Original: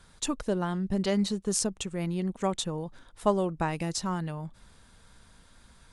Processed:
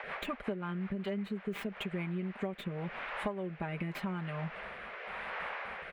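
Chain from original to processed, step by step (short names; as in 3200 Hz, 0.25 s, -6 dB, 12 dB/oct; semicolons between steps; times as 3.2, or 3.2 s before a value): tracing distortion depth 0.22 ms; gate with hold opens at -45 dBFS; resonant high shelf 3800 Hz -14 dB, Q 3; notch 2700 Hz, Q 9.6; comb 5 ms, depth 64%; band noise 470–2300 Hz -45 dBFS; rotary speaker horn 5.5 Hz, later 0.9 Hz, at 1.65; compressor 16:1, threshold -38 dBFS, peak gain reduction 22.5 dB; HPF 110 Hz 6 dB/oct; gain +6 dB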